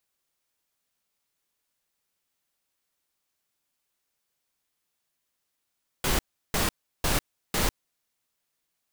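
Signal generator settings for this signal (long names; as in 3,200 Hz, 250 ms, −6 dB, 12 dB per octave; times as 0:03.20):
noise bursts pink, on 0.15 s, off 0.35 s, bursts 4, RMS −24.5 dBFS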